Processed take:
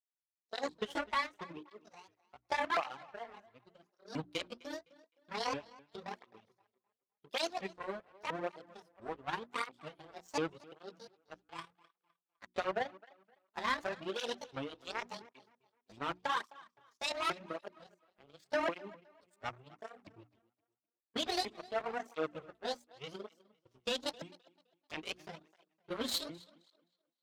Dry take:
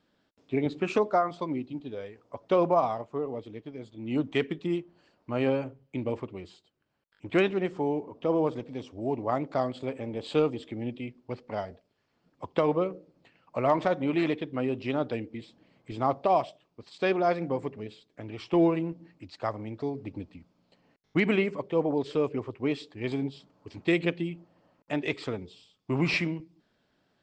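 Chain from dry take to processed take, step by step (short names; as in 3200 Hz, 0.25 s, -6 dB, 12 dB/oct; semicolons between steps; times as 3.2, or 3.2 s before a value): repeated pitch sweeps +11.5 st, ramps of 0.692 s; in parallel at -9.5 dB: one-sided clip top -32 dBFS; on the sum: power-law curve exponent 2; low shelf 220 Hz +4 dB; limiter -20 dBFS, peak gain reduction 8.5 dB; tilt shelf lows -3.5 dB; notches 60/120/180/240/300/360 Hz; tape echo 0.258 s, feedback 30%, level -20 dB, low-pass 5400 Hz; tape flanging out of phase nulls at 0.88 Hz, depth 7.2 ms; gain +1.5 dB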